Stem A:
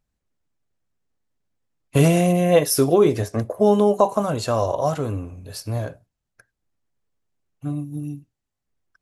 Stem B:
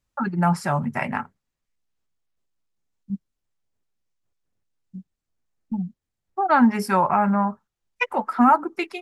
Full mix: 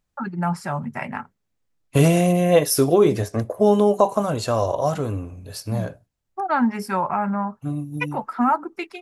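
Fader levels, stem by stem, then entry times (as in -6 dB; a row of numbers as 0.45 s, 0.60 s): 0.0 dB, -3.5 dB; 0.00 s, 0.00 s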